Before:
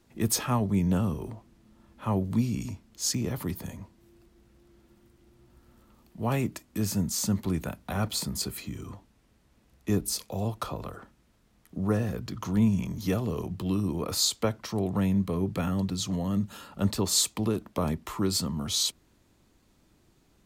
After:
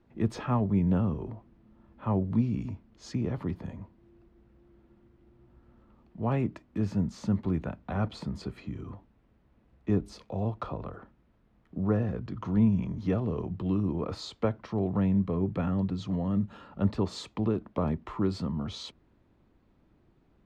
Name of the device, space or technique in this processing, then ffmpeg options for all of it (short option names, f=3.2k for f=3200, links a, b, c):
phone in a pocket: -af "lowpass=3.4k,highshelf=f=2.2k:g=-11"